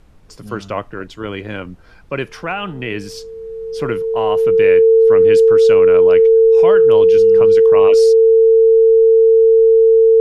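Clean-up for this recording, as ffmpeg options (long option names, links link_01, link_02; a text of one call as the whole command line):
ffmpeg -i in.wav -af "bandreject=frequency=450:width=30,agate=range=-21dB:threshold=-29dB" out.wav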